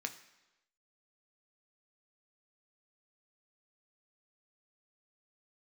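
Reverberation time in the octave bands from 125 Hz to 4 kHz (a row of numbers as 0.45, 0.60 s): 0.90, 0.95, 1.0, 1.0, 1.0, 0.95 s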